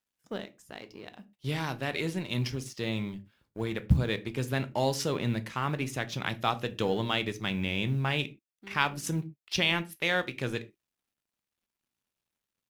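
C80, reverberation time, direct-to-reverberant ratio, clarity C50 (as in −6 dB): 25.5 dB, non-exponential decay, 11.0 dB, 19.5 dB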